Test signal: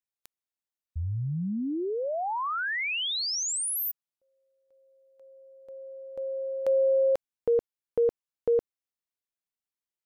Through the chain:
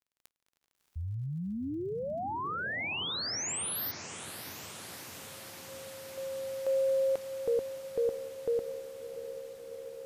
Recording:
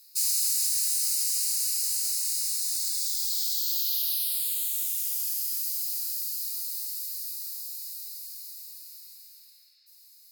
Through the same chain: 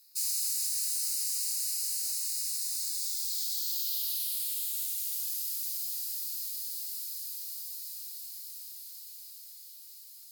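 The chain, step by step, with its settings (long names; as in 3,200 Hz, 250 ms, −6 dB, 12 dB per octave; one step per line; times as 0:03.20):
surface crackle 34 per second −48 dBFS
feedback delay with all-pass diffusion 647 ms, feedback 79%, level −11.5 dB
level −5.5 dB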